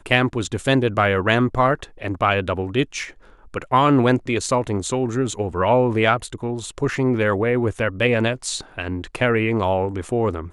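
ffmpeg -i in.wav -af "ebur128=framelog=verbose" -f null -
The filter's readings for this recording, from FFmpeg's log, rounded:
Integrated loudness:
  I:         -20.7 LUFS
  Threshold: -30.8 LUFS
Loudness range:
  LRA:         1.7 LU
  Threshold: -40.9 LUFS
  LRA low:   -21.6 LUFS
  LRA high:  -19.9 LUFS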